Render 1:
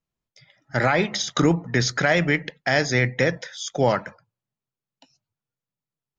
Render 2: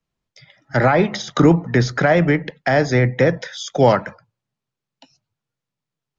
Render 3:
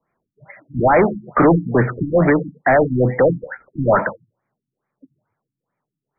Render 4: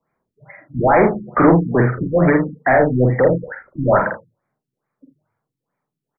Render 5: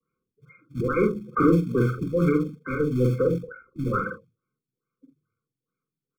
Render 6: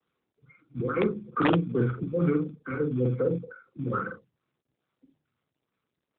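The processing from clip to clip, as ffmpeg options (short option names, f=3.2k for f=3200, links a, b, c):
-filter_complex "[0:a]lowpass=6.5k,acrossover=split=120|410|1400[a][b][c][d];[d]acompressor=threshold=-34dB:ratio=6[e];[a][b][c][e]amix=inputs=4:normalize=0,volume=6.5dB"
-filter_complex "[0:a]acrossover=split=2900[a][b];[b]acompressor=threshold=-43dB:ratio=4:attack=1:release=60[c];[a][c]amix=inputs=2:normalize=0,asplit=2[d][e];[e]highpass=f=720:p=1,volume=26dB,asoftclip=type=tanh:threshold=-1.5dB[f];[d][f]amix=inputs=2:normalize=0,lowpass=f=1.8k:p=1,volume=-6dB,afftfilt=real='re*lt(b*sr/1024,300*pow(2500/300,0.5+0.5*sin(2*PI*2.3*pts/sr)))':imag='im*lt(b*sr/1024,300*pow(2500/300,0.5+0.5*sin(2*PI*2.3*pts/sr)))':win_size=1024:overlap=0.75,volume=-3dB"
-af "aecho=1:1:47|80:0.631|0.188,volume=-1dB"
-filter_complex "[0:a]acrossover=split=170|330|720[a][b][c][d];[a]acrusher=bits=3:mode=log:mix=0:aa=0.000001[e];[e][b][c][d]amix=inputs=4:normalize=0,afftfilt=real='re*eq(mod(floor(b*sr/1024/520),2),0)':imag='im*eq(mod(floor(b*sr/1024/520),2),0)':win_size=1024:overlap=0.75,volume=-6.5dB"
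-af "aeval=exprs='(mod(3.16*val(0)+1,2)-1)/3.16':c=same,volume=-3.5dB" -ar 8000 -c:a libopencore_amrnb -b:a 12200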